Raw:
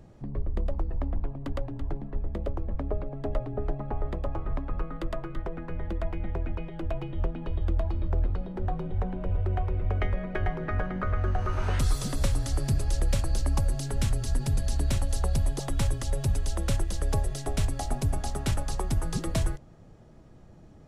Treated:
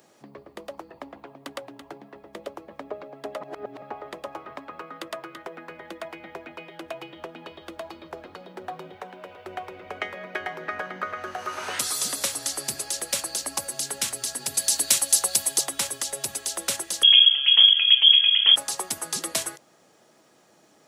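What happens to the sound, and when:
3.41–3.82 s: reverse
8.96–9.46 s: bass shelf 390 Hz -7 dB
14.54–15.61 s: treble shelf 2.9 kHz +8.5 dB
17.03–18.56 s: frequency inversion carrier 3.3 kHz
whole clip: high-pass 260 Hz 12 dB/octave; tilt EQ +3.5 dB/octave; trim +3 dB

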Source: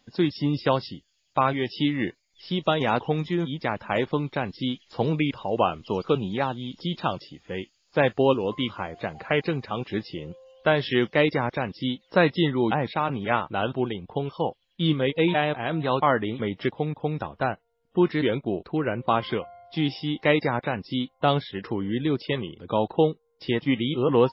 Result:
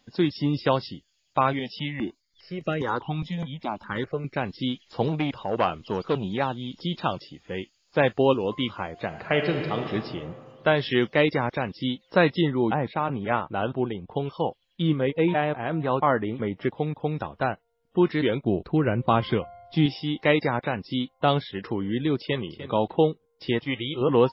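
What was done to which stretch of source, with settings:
1.59–4.37 s: stepped phaser 4.9 Hz 350–3500 Hz
5.08–6.24 s: transformer saturation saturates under 890 Hz
9.06–9.90 s: reverb throw, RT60 2.2 s, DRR 3.5 dB
12.41–14.11 s: low-pass 1.8 kHz 6 dB/octave
14.82–16.71 s: peaking EQ 4.2 kHz -11 dB 1.3 oct
18.45–19.86 s: bass shelf 210 Hz +10 dB
22.20–22.65 s: echo throw 300 ms, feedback 10%, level -13 dB
23.59–24.01 s: peaking EQ 210 Hz -13.5 dB 0.83 oct

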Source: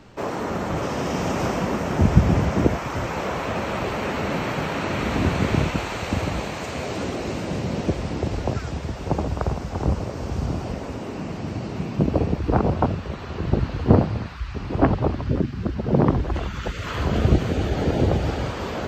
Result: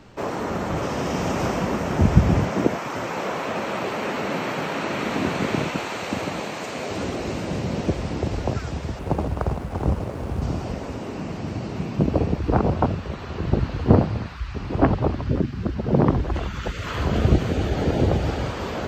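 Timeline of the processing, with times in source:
2.45–6.91 s: high-pass 180 Hz
8.99–10.42 s: median filter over 9 samples

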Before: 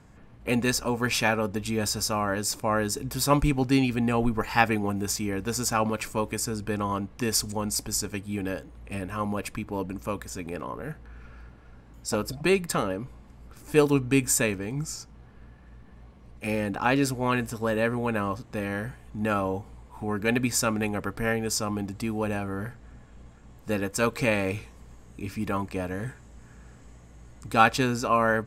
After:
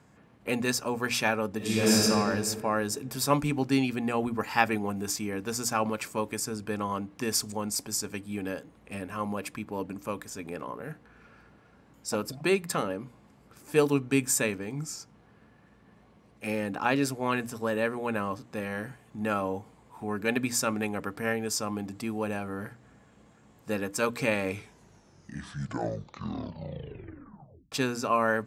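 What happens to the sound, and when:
1.57–2.02 s: reverb throw, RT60 2.3 s, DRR -9 dB
24.47 s: tape stop 3.25 s
whole clip: high-pass 120 Hz 12 dB/octave; hum notches 60/120/180/240/300 Hz; trim -2.5 dB

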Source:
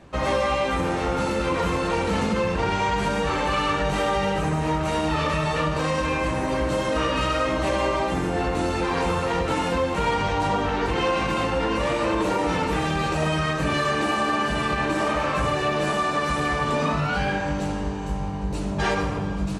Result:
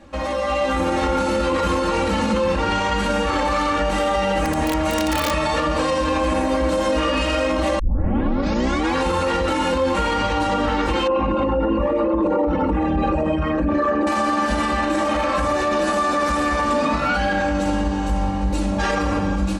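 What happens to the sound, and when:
4.43–5.32 s: integer overflow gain 14.5 dB
7.79 s: tape start 1.17 s
11.07–14.07 s: resonances exaggerated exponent 2
whole clip: comb 3.6 ms, depth 94%; peak limiter -17 dBFS; level rider gain up to 5 dB

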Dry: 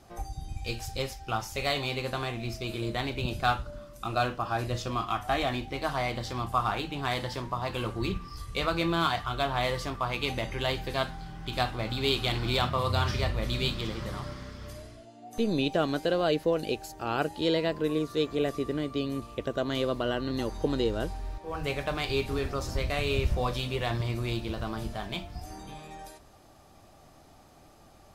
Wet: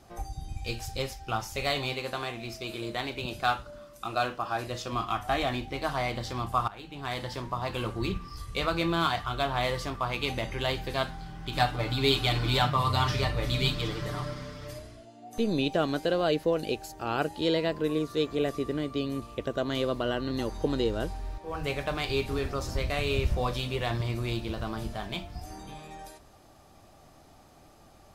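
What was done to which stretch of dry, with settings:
1.93–4.92 s: bass shelf 170 Hz -11 dB
6.68–7.71 s: fade in equal-power, from -19 dB
11.54–14.79 s: comb 6.8 ms, depth 83%

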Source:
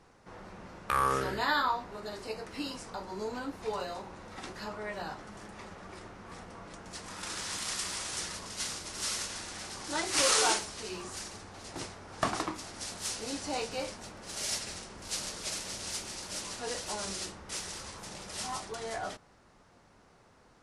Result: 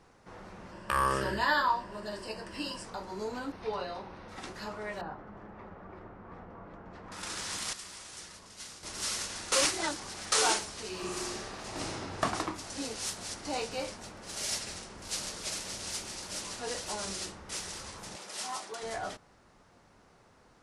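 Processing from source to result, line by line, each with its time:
0.71–2.85 s: rippled EQ curve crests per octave 1.3, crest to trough 9 dB
3.52–4.29 s: Savitzky-Golay filter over 15 samples
5.01–7.12 s: low-pass 1.4 kHz
7.73–8.83 s: gain -9.5 dB
9.52–10.32 s: reverse
10.90–12.02 s: reverb throw, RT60 2.5 s, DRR -4 dB
12.70–13.45 s: reverse
18.16–18.83 s: Bessel high-pass 350 Hz

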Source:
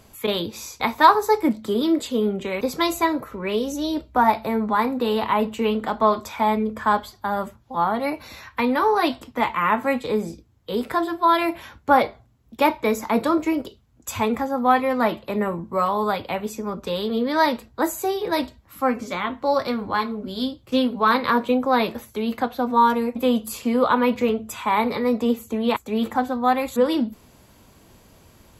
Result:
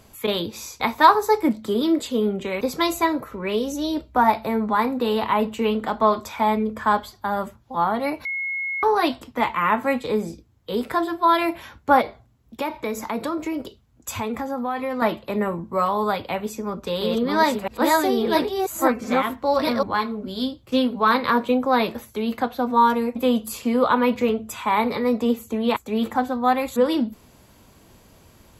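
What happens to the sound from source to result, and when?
8.25–8.83 s: bleep 2.17 kHz -24 dBFS
12.01–15.02 s: compression 3:1, threshold -24 dBFS
16.34–19.83 s: chunks repeated in reverse 670 ms, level -0.5 dB

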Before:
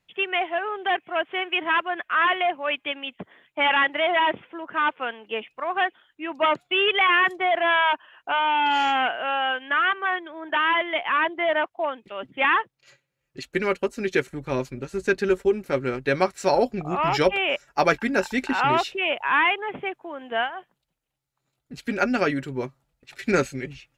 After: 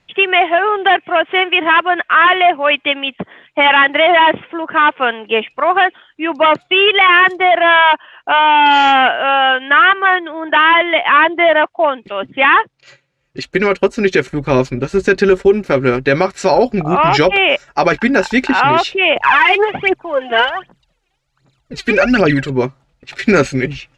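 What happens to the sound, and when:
19.16–22.50 s: phaser 1.3 Hz, delay 2.9 ms, feedback 75%
whole clip: low-pass 5.9 kHz 12 dB/octave; gain riding within 3 dB 2 s; loudness maximiser +13.5 dB; trim -1 dB

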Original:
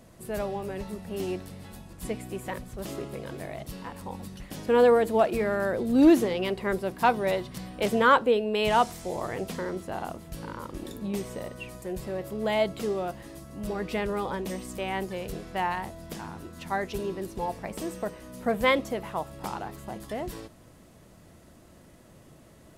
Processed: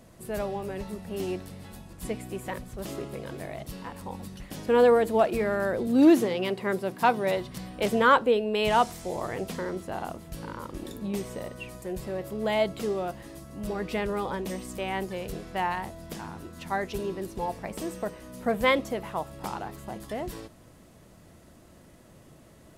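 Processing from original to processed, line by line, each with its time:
5.87–7.37 s: high-pass 100 Hz 24 dB/octave

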